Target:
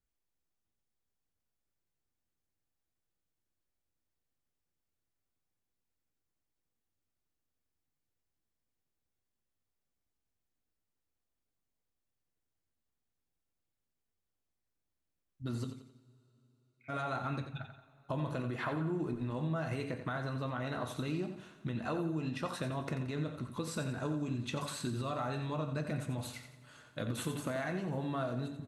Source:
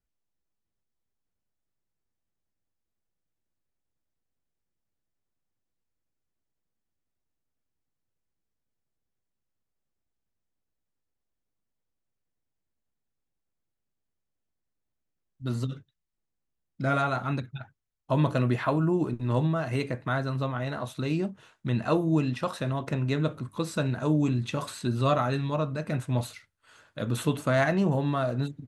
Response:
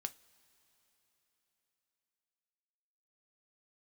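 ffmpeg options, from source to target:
-filter_complex "[0:a]alimiter=limit=-20dB:level=0:latency=1:release=75,acompressor=threshold=-30dB:ratio=6,asplit=3[a][b][c];[a]afade=t=out:st=15.69:d=0.02[d];[b]asuperpass=centerf=2300:order=4:qfactor=6.4,afade=t=in:st=15.69:d=0.02,afade=t=out:st=16.88:d=0.02[e];[c]afade=t=in:st=16.88:d=0.02[f];[d][e][f]amix=inputs=3:normalize=0,aecho=1:1:88|176|264|352:0.355|0.142|0.0568|0.0227[g];[1:a]atrim=start_sample=2205[h];[g][h]afir=irnorm=-1:irlink=0"

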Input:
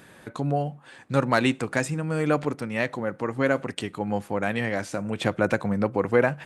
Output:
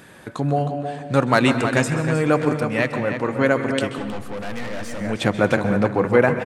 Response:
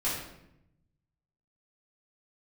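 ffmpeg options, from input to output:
-filter_complex "[0:a]asplit=2[a][b];[b]adelay=315,lowpass=f=4.9k:p=1,volume=-8dB,asplit=2[c][d];[d]adelay=315,lowpass=f=4.9k:p=1,volume=0.32,asplit=2[e][f];[f]adelay=315,lowpass=f=4.9k:p=1,volume=0.32,asplit=2[g][h];[h]adelay=315,lowpass=f=4.9k:p=1,volume=0.32[i];[a][c][e][g][i]amix=inputs=5:normalize=0,asettb=1/sr,asplit=3[j][k][l];[j]atrim=end=3.984[m];[k]atrim=start=3.98:end=5.01,asetpts=PTS-STARTPTS,afade=t=in:d=0.004:c=qsin,afade=t=out:st=1.026:d=0.004:c=qsin,aeval=exprs='(tanh(44.7*val(0)+0.5)-tanh(0.5))/44.7':c=same[n];[l]atrim=start=5.006[o];[m][n]acrossfade=d=0.004:c1=hsin:c2=qsin[p];[p][o]acrossfade=d=0.004:c1=qsin:c2=hsin,asplit=2[q][r];[1:a]atrim=start_sample=2205,adelay=128[s];[r][s]afir=irnorm=-1:irlink=0,volume=-17.5dB[t];[q][t]amix=inputs=2:normalize=0,volume=4.5dB"

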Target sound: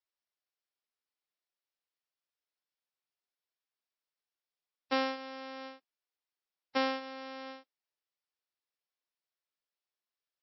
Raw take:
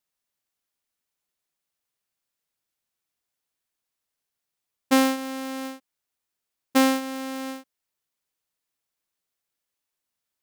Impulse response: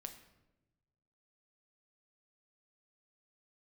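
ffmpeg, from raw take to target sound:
-af "highpass=f=330:w=0.5412,highpass=f=330:w=1.3066,volume=-8dB" -ar 16000 -c:a libmp3lame -b:a 24k

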